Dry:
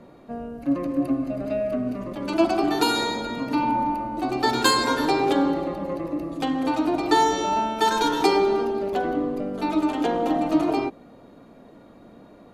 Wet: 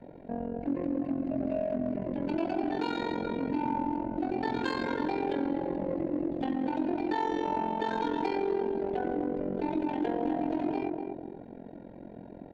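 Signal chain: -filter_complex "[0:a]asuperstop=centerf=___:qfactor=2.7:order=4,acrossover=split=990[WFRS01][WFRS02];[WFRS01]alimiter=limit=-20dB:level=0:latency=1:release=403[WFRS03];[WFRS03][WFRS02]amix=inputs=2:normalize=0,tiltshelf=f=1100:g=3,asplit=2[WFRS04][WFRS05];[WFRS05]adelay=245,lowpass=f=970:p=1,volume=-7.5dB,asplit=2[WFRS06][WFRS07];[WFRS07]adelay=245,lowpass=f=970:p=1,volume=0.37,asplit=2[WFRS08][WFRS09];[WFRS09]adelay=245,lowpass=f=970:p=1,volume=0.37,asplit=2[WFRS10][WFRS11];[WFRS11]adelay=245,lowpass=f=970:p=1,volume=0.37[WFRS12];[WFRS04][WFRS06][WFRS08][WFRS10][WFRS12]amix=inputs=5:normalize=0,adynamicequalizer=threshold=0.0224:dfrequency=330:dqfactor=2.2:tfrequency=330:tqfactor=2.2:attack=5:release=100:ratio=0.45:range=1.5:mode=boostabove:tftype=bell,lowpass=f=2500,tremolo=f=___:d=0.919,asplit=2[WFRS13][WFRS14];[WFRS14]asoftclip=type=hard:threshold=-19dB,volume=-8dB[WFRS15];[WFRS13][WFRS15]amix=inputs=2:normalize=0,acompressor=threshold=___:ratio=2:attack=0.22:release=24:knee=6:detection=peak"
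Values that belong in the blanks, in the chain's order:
1200, 44, -30dB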